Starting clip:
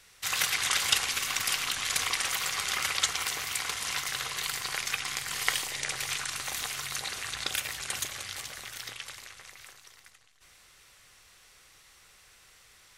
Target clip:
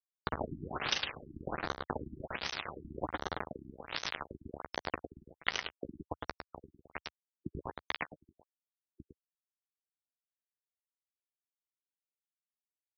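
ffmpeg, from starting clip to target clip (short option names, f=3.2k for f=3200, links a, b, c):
-filter_complex "[0:a]bandreject=f=297.8:t=h:w=4,bandreject=f=595.6:t=h:w=4,bandreject=f=893.4:t=h:w=4,acrusher=samples=10:mix=1:aa=0.000001:lfo=1:lforange=16:lforate=0.7,acompressor=mode=upward:threshold=-34dB:ratio=2.5,acrusher=bits=3:mix=0:aa=0.000001,equalizer=f=77:w=0.75:g=8.5,asplit=2[a][b];[b]adelay=13,volume=-13dB[c];[a][c]amix=inputs=2:normalize=0,aecho=1:1:106:0.473,acompressor=threshold=-28dB:ratio=6,lowshelf=f=190:g=-11.5,afftfilt=real='re*lt(b*sr/1024,340*pow(6400/340,0.5+0.5*sin(2*PI*1.3*pts/sr)))':imag='im*lt(b*sr/1024,340*pow(6400/340,0.5+0.5*sin(2*PI*1.3*pts/sr)))':win_size=1024:overlap=0.75,volume=1dB"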